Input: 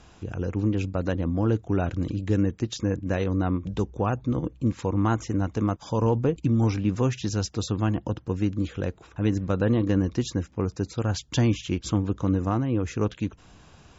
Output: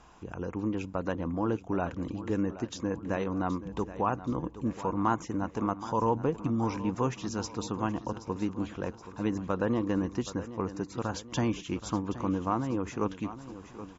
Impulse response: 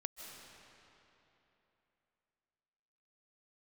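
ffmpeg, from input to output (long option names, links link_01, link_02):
-af "equalizer=frequency=100:width_type=o:width=0.67:gain=-9,equalizer=frequency=1000:width_type=o:width=0.67:gain=9,equalizer=frequency=4000:width_type=o:width=0.67:gain=-4,aecho=1:1:774|1548|2322|3096|3870:0.2|0.0998|0.0499|0.0249|0.0125,volume=-5dB"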